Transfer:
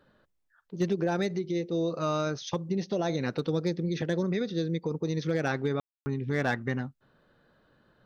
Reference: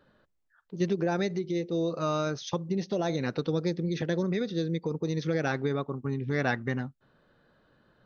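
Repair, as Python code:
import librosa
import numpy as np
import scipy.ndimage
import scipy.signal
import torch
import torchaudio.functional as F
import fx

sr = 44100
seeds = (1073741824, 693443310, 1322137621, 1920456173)

y = fx.fix_declip(x, sr, threshold_db=-18.5)
y = fx.fix_ambience(y, sr, seeds[0], print_start_s=0.2, print_end_s=0.7, start_s=5.8, end_s=6.06)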